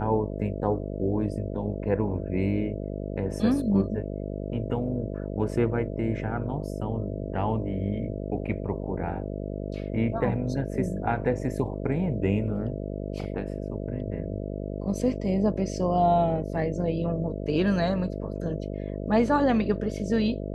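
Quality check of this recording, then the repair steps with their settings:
buzz 50 Hz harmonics 13 -33 dBFS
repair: de-hum 50 Hz, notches 13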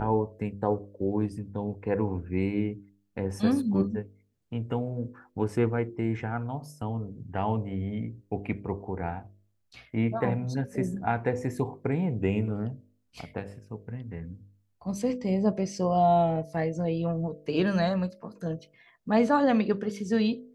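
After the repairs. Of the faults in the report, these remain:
none

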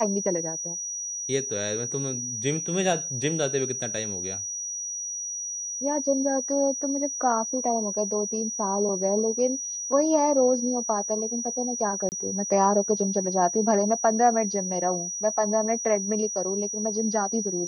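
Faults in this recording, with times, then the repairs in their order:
tone 5800 Hz -30 dBFS
12.09–12.12 gap 29 ms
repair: notch 5800 Hz, Q 30; interpolate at 12.09, 29 ms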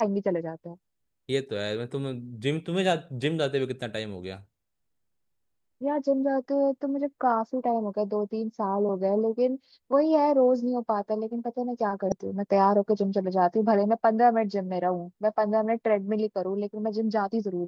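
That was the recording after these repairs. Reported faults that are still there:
none

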